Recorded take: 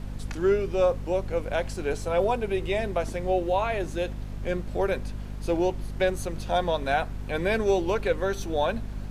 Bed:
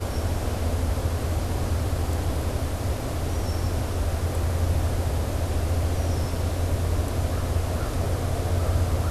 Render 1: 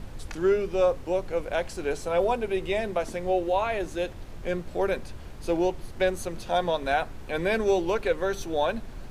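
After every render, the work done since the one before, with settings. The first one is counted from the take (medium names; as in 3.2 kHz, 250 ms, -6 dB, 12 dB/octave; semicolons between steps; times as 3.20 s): hum notches 50/100/150/200/250 Hz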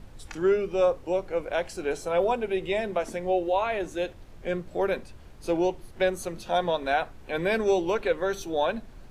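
noise print and reduce 7 dB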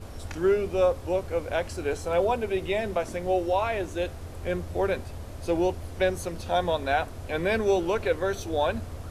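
add bed -14 dB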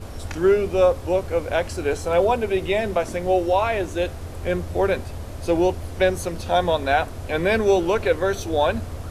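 trim +5.5 dB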